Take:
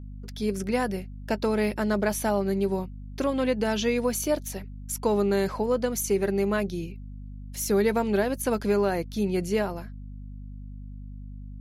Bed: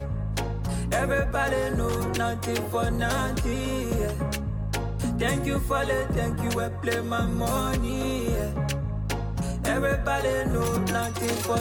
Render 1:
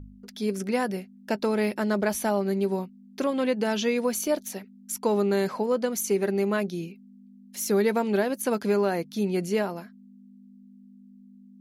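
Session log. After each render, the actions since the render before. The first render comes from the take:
hum removal 50 Hz, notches 3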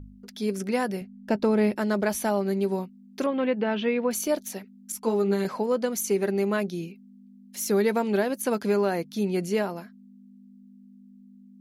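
0:01.01–0:01.75: spectral tilt −2 dB per octave
0:03.26–0:04.11: low-pass filter 3,100 Hz 24 dB per octave
0:04.92–0:05.45: string-ensemble chorus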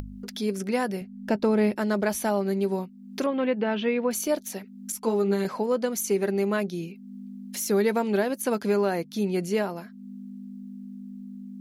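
upward compression, threshold −29 dBFS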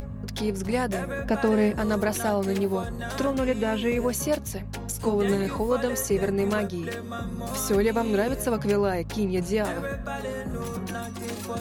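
mix in bed −7.5 dB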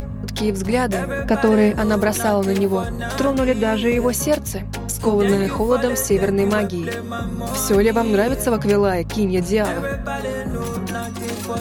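level +7 dB

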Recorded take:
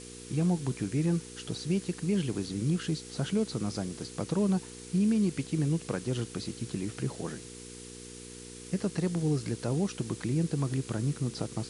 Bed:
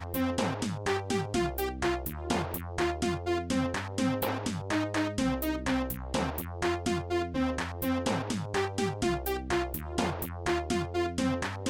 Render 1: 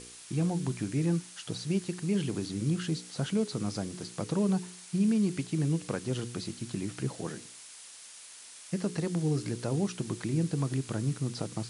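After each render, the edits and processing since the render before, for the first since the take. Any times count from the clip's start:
hum removal 60 Hz, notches 8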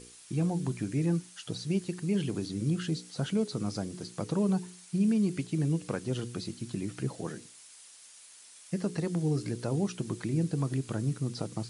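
broadband denoise 6 dB, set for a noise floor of −49 dBFS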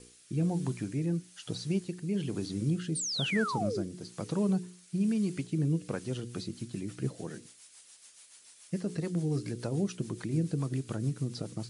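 rotating-speaker cabinet horn 1.1 Hz, later 7 Hz, at 0:05.89
0:02.95–0:03.83: sound drawn into the spectrogram fall 310–9,500 Hz −34 dBFS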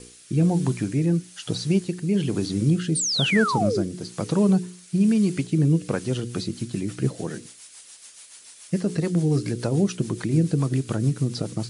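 level +9.5 dB

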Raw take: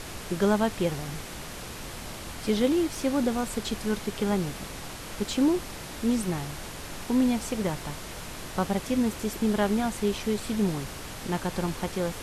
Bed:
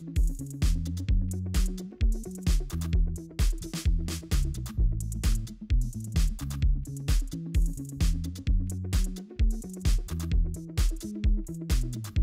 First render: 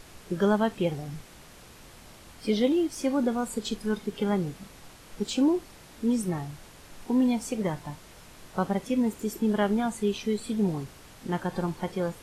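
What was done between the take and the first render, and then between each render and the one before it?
noise reduction from a noise print 11 dB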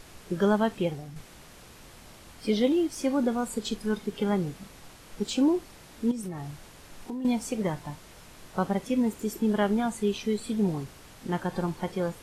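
0:00.76–0:01.16: fade out, to −7 dB
0:06.11–0:07.25: downward compressor 12 to 1, threshold −31 dBFS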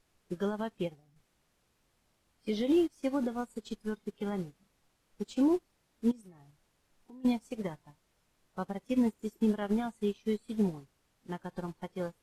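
brickwall limiter −18.5 dBFS, peak gain reduction 7 dB
expander for the loud parts 2.5 to 1, over −39 dBFS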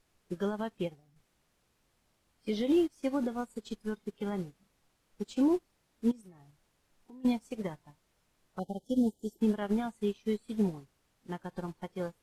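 0:08.59–0:09.39: linear-phase brick-wall band-stop 890–2,900 Hz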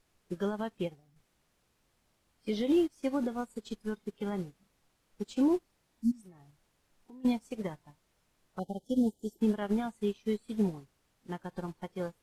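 0:05.97–0:06.20: healed spectral selection 280–4,200 Hz before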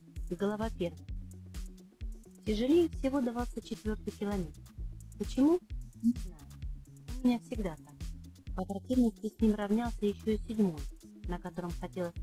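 mix in bed −16.5 dB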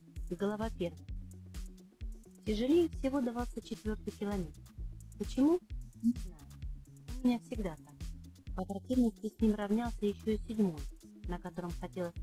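level −2 dB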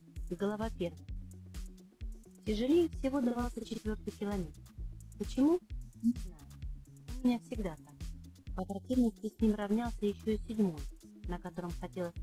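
0:03.19–0:03.78: double-tracking delay 42 ms −3 dB

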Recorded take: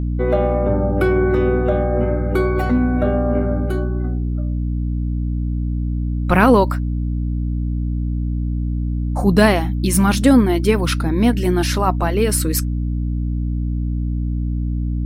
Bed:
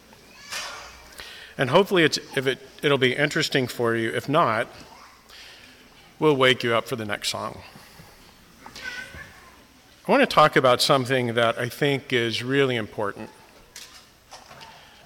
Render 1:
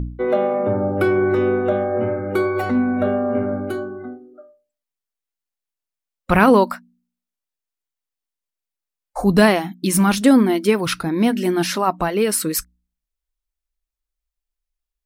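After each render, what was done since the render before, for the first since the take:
hum removal 60 Hz, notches 5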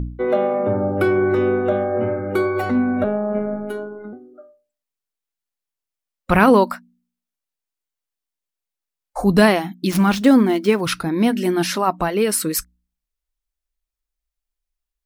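0:03.04–0:04.13: phases set to zero 209 Hz
0:09.90–0:10.81: running median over 5 samples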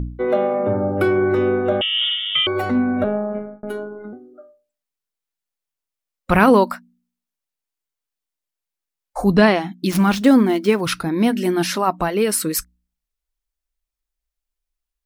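0:01.81–0:02.47: voice inversion scrambler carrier 3,500 Hz
0:03.18–0:03.63: fade out
0:09.34–0:09.77: low-pass filter 3,900 Hz → 10,000 Hz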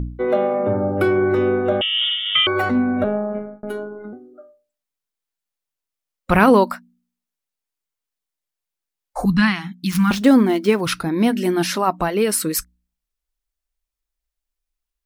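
0:02.24–0:02.69: dynamic equaliser 1,500 Hz, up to +7 dB, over −36 dBFS, Q 1.1
0:09.25–0:10.11: Chebyshev band-stop filter 210–1,200 Hz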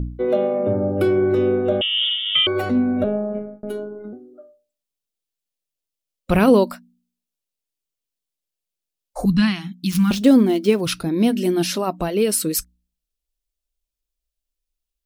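flat-topped bell 1,300 Hz −8 dB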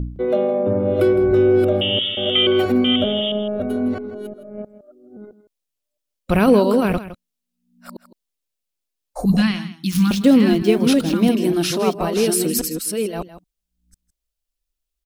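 delay that plays each chunk backwards 664 ms, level −4 dB
single-tap delay 161 ms −14 dB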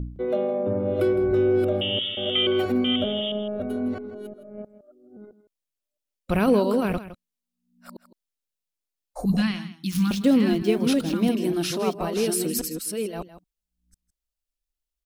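level −6 dB

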